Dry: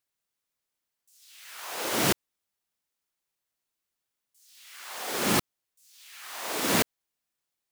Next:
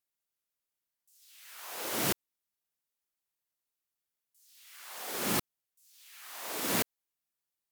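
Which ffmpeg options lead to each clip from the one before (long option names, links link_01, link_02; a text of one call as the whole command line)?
ffmpeg -i in.wav -af "equalizer=frequency=15000:width=0.57:gain=6,volume=-7dB" out.wav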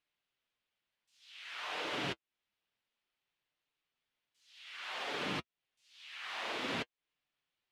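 ffmpeg -i in.wav -af "acompressor=threshold=-41dB:ratio=4,flanger=delay=6.6:depth=2.6:regen=-35:speed=0.56:shape=sinusoidal,lowpass=frequency=3100:width_type=q:width=1.7,volume=9dB" out.wav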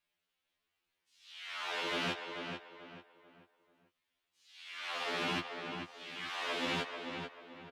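ffmpeg -i in.wav -filter_complex "[0:a]asplit=2[link_01][link_02];[link_02]adelay=439,lowpass=frequency=2800:poles=1,volume=-5.5dB,asplit=2[link_03][link_04];[link_04]adelay=439,lowpass=frequency=2800:poles=1,volume=0.35,asplit=2[link_05][link_06];[link_06]adelay=439,lowpass=frequency=2800:poles=1,volume=0.35,asplit=2[link_07][link_08];[link_08]adelay=439,lowpass=frequency=2800:poles=1,volume=0.35[link_09];[link_03][link_05][link_07][link_09]amix=inputs=4:normalize=0[link_10];[link_01][link_10]amix=inputs=2:normalize=0,afftfilt=real='re*2*eq(mod(b,4),0)':imag='im*2*eq(mod(b,4),0)':win_size=2048:overlap=0.75,volume=4.5dB" out.wav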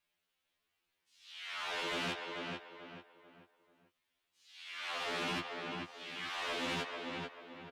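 ffmpeg -i in.wav -af "asoftclip=type=tanh:threshold=-32.5dB,volume=1dB" out.wav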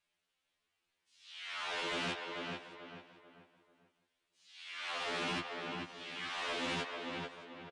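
ffmpeg -i in.wav -af "aecho=1:1:615:0.0944,aresample=22050,aresample=44100" out.wav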